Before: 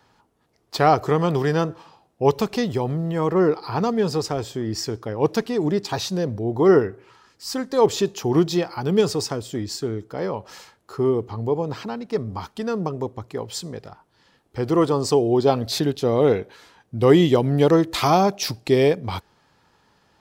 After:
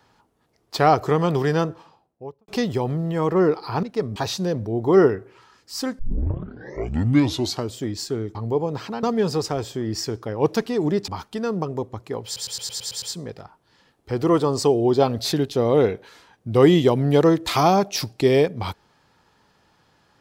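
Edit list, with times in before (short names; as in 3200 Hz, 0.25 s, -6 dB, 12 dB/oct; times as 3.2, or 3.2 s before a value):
1.58–2.48 studio fade out
3.83–5.88 swap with 11.99–12.32
7.71 tape start 1.78 s
10.07–11.31 cut
13.49 stutter 0.11 s, 8 plays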